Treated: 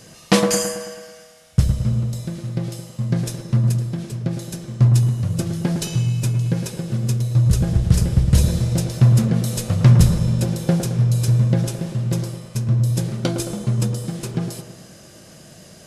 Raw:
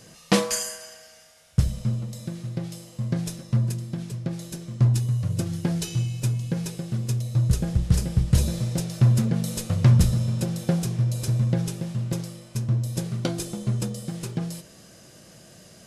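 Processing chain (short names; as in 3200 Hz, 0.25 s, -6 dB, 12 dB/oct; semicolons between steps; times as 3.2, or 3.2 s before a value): dark delay 0.109 s, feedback 54%, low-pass 1600 Hz, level -6 dB; gain +4.5 dB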